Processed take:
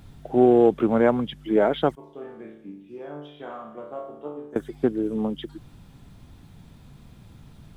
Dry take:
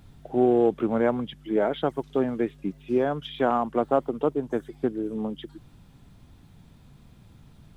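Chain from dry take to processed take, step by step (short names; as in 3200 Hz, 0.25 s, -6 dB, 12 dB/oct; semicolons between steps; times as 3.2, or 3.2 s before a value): 1.95–4.56 resonator bank D2 sus4, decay 0.74 s; gain +4 dB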